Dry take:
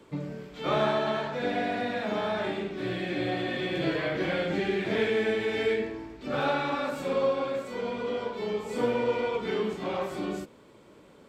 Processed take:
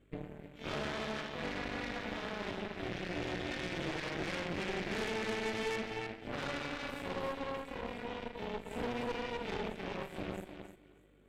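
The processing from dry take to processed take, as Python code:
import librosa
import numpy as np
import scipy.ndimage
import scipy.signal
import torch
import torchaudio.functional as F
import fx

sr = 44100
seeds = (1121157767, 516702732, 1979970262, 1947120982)

y = fx.dmg_buzz(x, sr, base_hz=50.0, harmonics=23, level_db=-54.0, tilt_db=-4, odd_only=False)
y = fx.fixed_phaser(y, sr, hz=2200.0, stages=4)
y = fx.tube_stage(y, sr, drive_db=25.0, bias=0.6)
y = fx.echo_thinned(y, sr, ms=307, feedback_pct=30, hz=210.0, wet_db=-4.5)
y = fx.cheby_harmonics(y, sr, harmonics=(3, 7, 8), levels_db=(-21, -29, -17), full_scale_db=-19.5)
y = F.gain(torch.from_numpy(y), -3.5).numpy()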